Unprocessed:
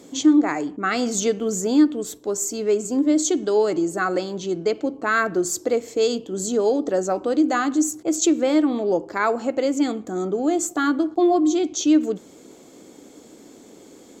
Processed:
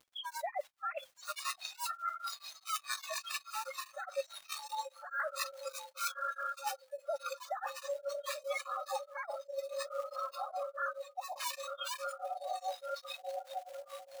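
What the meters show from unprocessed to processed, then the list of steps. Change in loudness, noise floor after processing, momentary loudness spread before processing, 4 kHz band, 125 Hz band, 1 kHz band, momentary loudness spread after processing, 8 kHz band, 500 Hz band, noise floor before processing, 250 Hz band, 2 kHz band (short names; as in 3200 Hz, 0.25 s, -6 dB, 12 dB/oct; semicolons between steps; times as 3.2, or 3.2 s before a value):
-18.5 dB, -65 dBFS, 7 LU, -9.0 dB, under -40 dB, -10.5 dB, 5 LU, -18.0 dB, -19.0 dB, -47 dBFS, under -40 dB, -13.5 dB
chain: sine-wave speech; diffused feedback echo 1.191 s, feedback 61%, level -6.5 dB; frequency shift +14 Hz; soft clip -14 dBFS, distortion -10 dB; spectral gate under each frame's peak -25 dB strong; short-mantissa float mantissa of 2-bit; brick-wall FIR high-pass 550 Hz; spectral noise reduction 22 dB; crackle 160/s -63 dBFS; reverse; compressor 12:1, threshold -45 dBFS, peak gain reduction 22.5 dB; reverse; beating tremolo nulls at 4.8 Hz; gain +12.5 dB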